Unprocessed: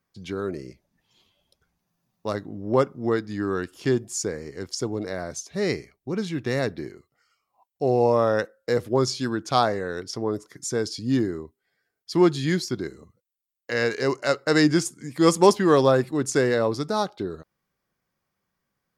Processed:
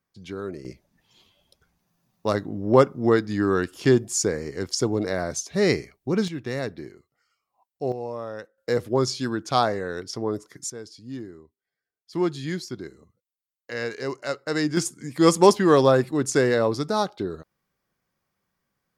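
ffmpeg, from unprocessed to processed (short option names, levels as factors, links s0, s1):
-af "asetnsamples=n=441:p=0,asendcmd='0.65 volume volume 4.5dB;6.28 volume volume -4dB;7.92 volume volume -13dB;8.58 volume volume -0.5dB;10.7 volume volume -13dB;12.13 volume volume -6dB;14.77 volume volume 1dB',volume=0.668"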